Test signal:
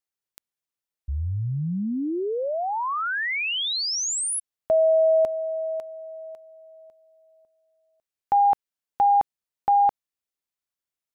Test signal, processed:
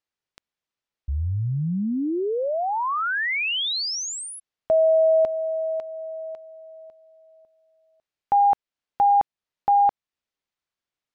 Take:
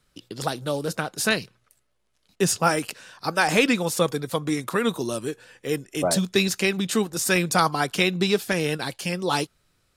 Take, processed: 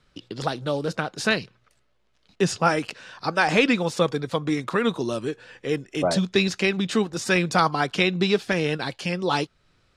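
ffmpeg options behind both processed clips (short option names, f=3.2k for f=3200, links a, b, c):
-filter_complex "[0:a]lowpass=4.8k,asplit=2[a][b];[b]acompressor=threshold=-35dB:ratio=6:attack=0.13:release=447:knee=1:detection=peak,volume=-2.5dB[c];[a][c]amix=inputs=2:normalize=0"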